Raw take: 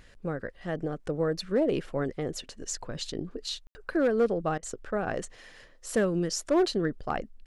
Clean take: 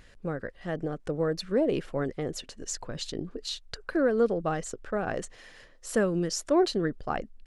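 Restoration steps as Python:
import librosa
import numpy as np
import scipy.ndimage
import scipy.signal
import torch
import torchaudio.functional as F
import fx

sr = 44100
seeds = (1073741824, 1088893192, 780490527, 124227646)

y = fx.fix_declip(x, sr, threshold_db=-18.0)
y = fx.fix_ambience(y, sr, seeds[0], print_start_s=5.33, print_end_s=5.83, start_s=3.67, end_s=3.75)
y = fx.fix_interpolate(y, sr, at_s=(4.58,), length_ms=46.0)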